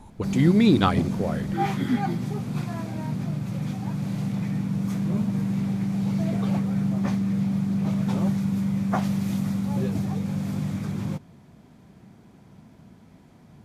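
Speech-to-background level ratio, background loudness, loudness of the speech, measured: 4.5 dB, −26.5 LKFS, −22.0 LKFS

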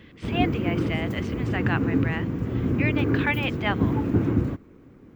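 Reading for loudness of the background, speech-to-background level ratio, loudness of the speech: −25.5 LKFS, −5.0 dB, −30.5 LKFS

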